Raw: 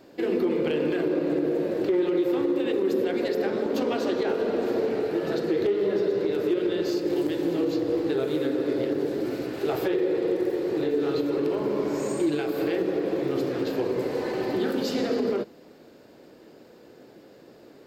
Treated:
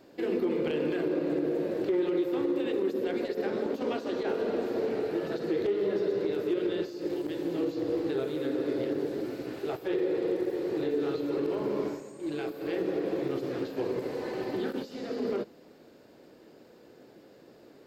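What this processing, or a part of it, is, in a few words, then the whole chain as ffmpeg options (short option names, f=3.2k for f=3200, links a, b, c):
de-esser from a sidechain: -filter_complex "[0:a]asplit=2[a][b];[b]highpass=f=6k:w=0.5412,highpass=f=6k:w=1.3066,apad=whole_len=787850[c];[a][c]sidechaincompress=threshold=-56dB:ratio=10:attack=4.4:release=35,volume=-4dB"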